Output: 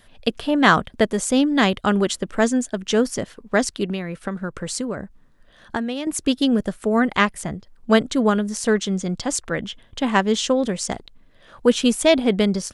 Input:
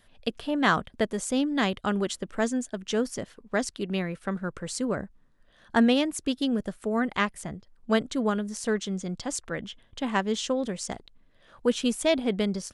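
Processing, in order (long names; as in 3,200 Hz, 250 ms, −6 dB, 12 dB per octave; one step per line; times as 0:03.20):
0:03.89–0:06.07: downward compressor 10 to 1, threshold −31 dBFS, peak gain reduction 14.5 dB
level +8 dB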